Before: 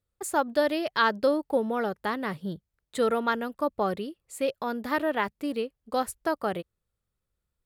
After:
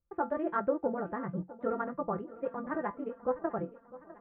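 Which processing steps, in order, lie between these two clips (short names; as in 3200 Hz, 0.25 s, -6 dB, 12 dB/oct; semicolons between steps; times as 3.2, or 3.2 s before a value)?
inverse Chebyshev low-pass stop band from 5200 Hz, stop band 60 dB; low shelf 220 Hz +8 dB; resonator 170 Hz, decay 0.32 s, harmonics all, mix 80%; granular stretch 0.55×, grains 47 ms; feedback echo 0.653 s, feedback 55%, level -18 dB; gain +4 dB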